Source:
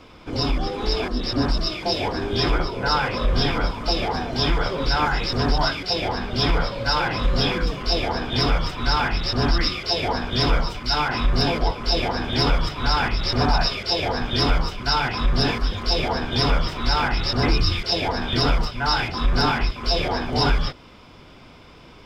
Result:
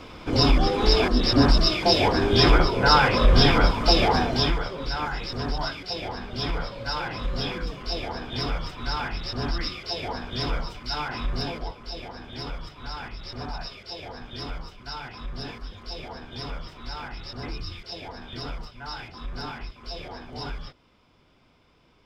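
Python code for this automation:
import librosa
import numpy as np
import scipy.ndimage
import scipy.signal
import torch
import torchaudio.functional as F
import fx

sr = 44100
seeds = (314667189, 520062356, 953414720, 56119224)

y = fx.gain(x, sr, db=fx.line((4.24, 4.0), (4.69, -8.0), (11.32, -8.0), (11.92, -15.0)))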